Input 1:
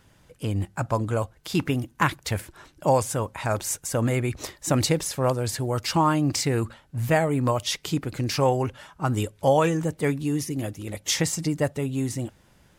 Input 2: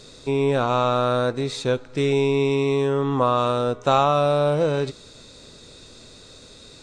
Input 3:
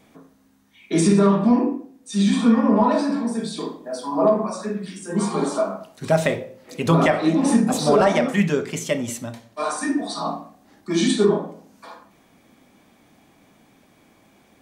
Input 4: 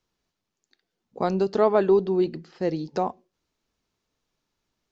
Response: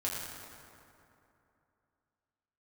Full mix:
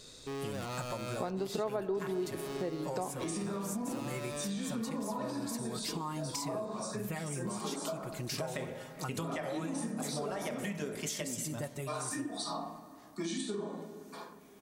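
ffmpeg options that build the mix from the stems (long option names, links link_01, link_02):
-filter_complex "[0:a]aecho=1:1:5.5:0.65,volume=-12.5dB,asplit=2[link_01][link_02];[link_02]volume=-21dB[link_03];[1:a]volume=26dB,asoftclip=hard,volume=-26dB,volume=-10.5dB[link_04];[2:a]adelay=2300,volume=-8.5dB,asplit=2[link_05][link_06];[link_06]volume=-18.5dB[link_07];[3:a]volume=-4.5dB,asplit=2[link_08][link_09];[link_09]volume=-14.5dB[link_10];[link_01][link_04][link_05]amix=inputs=3:normalize=0,highshelf=frequency=4900:gain=10.5,acompressor=threshold=-31dB:ratio=6,volume=0dB[link_11];[4:a]atrim=start_sample=2205[link_12];[link_03][link_07][link_10]amix=inputs=3:normalize=0[link_13];[link_13][link_12]afir=irnorm=-1:irlink=0[link_14];[link_08][link_11][link_14]amix=inputs=3:normalize=0,acompressor=threshold=-35dB:ratio=3"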